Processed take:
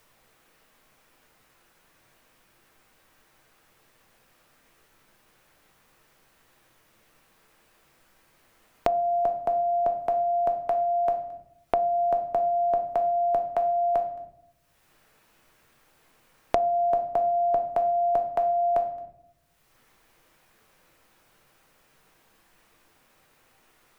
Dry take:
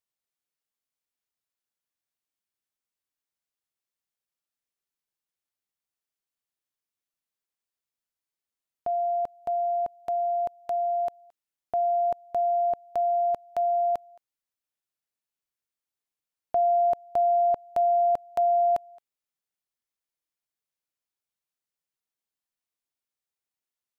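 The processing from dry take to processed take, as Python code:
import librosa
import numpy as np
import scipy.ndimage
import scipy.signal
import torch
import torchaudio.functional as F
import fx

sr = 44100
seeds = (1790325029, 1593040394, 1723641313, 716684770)

y = fx.room_shoebox(x, sr, seeds[0], volume_m3=64.0, walls='mixed', distance_m=0.6)
y = fx.band_squash(y, sr, depth_pct=100)
y = y * librosa.db_to_amplitude(3.5)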